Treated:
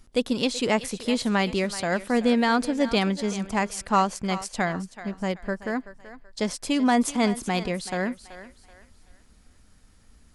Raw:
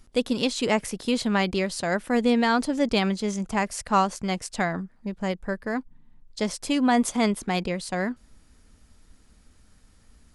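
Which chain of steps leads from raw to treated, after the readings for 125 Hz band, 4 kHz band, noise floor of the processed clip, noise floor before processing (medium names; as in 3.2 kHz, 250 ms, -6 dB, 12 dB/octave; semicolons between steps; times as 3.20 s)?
0.0 dB, 0.0 dB, -57 dBFS, -58 dBFS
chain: thinning echo 380 ms, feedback 35%, high-pass 420 Hz, level -13.5 dB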